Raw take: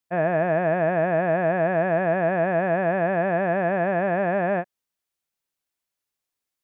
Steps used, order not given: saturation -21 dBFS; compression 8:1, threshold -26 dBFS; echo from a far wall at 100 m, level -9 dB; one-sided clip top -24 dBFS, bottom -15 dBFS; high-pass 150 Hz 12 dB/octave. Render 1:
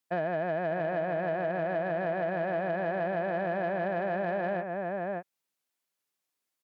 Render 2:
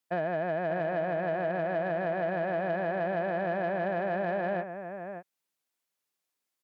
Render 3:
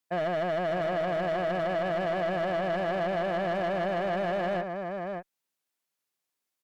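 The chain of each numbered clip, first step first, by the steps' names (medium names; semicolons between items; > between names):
echo from a far wall > compression > saturation > one-sided clip > high-pass; compression > one-sided clip > echo from a far wall > saturation > high-pass; high-pass > one-sided clip > echo from a far wall > saturation > compression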